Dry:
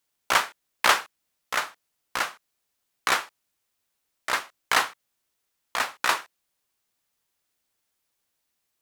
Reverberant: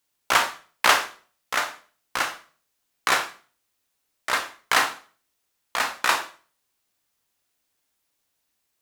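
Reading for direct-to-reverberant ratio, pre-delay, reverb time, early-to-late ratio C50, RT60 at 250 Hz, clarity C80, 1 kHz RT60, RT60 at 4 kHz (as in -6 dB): 6.5 dB, 23 ms, 0.40 s, 11.5 dB, 0.45 s, 16.5 dB, 0.40 s, 0.35 s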